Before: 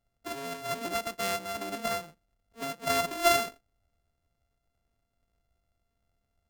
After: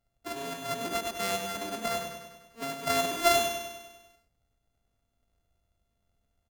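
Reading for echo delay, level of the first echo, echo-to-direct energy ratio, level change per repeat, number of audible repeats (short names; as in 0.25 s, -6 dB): 99 ms, -6.5 dB, -4.5 dB, -4.5 dB, 7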